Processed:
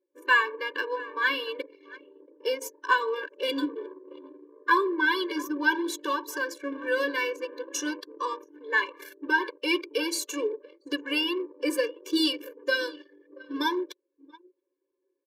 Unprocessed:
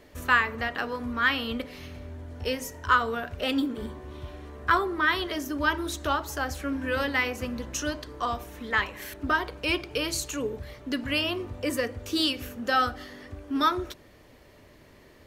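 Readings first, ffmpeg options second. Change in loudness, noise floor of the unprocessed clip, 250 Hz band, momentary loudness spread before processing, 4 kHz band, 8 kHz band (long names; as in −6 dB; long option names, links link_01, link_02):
−0.5 dB, −54 dBFS, −0.5 dB, 15 LU, −0.5 dB, −0.5 dB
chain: -af "aecho=1:1:680:0.112,anlmdn=1.58,afftfilt=real='re*eq(mod(floor(b*sr/1024/300),2),1)':imag='im*eq(mod(floor(b*sr/1024/300),2),1)':win_size=1024:overlap=0.75,volume=3dB"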